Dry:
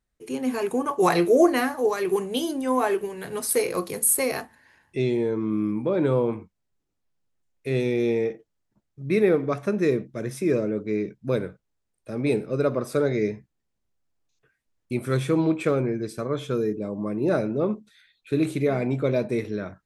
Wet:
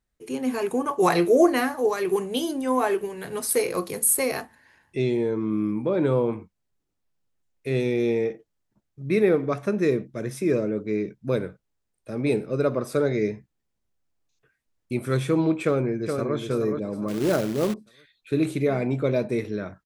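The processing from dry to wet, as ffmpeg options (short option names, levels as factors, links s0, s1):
-filter_complex "[0:a]asplit=2[s0][s1];[s1]afade=t=in:st=15.64:d=0.01,afade=t=out:st=16.37:d=0.01,aecho=0:1:420|840|1260|1680:0.530884|0.18581|0.0650333|0.0227617[s2];[s0][s2]amix=inputs=2:normalize=0,asettb=1/sr,asplit=3[s3][s4][s5];[s3]atrim=end=17.084[s6];[s4]atrim=start=17.08:end=17.74,asetpts=PTS-STARTPTS,afade=t=in:d=0.004:c=qsin,afade=t=out:st=0.656:d=0.004:c=qsin,acrusher=bits=3:mode=log:mix=0:aa=0.000001[s7];[s5]atrim=start=17.736[s8];[s6][s7]acrossfade=d=0.004:c1=hsin:c2=qsin[s9];[s9][s8]acrossfade=d=0.004:c1=qsin:c2=hsin"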